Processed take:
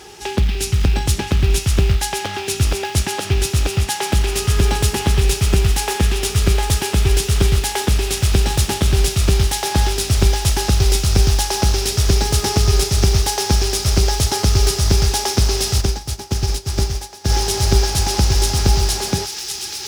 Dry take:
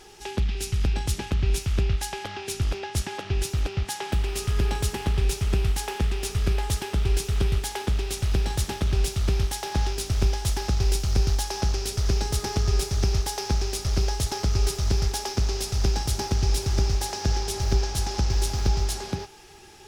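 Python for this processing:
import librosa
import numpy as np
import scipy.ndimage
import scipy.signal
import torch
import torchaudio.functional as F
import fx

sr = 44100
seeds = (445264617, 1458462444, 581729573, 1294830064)

p1 = scipy.signal.sosfilt(scipy.signal.butter(4, 50.0, 'highpass', fs=sr, output='sos'), x)
p2 = fx.quant_float(p1, sr, bits=2)
p3 = p1 + (p2 * 10.0 ** (-6.0 / 20.0))
p4 = fx.echo_wet_highpass(p3, sr, ms=1064, feedback_pct=74, hz=2400.0, wet_db=-4.5)
p5 = fx.upward_expand(p4, sr, threshold_db=-28.0, expansion=2.5, at=(15.8, 17.29), fade=0.02)
y = p5 * 10.0 ** (6.0 / 20.0)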